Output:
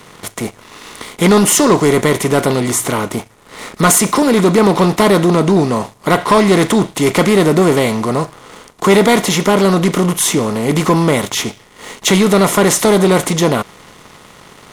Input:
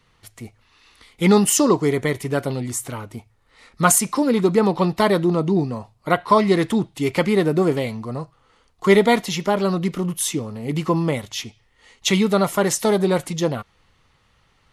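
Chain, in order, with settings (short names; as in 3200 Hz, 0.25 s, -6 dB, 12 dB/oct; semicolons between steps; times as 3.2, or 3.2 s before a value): per-bin compression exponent 0.6; sample leveller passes 2; gain -2.5 dB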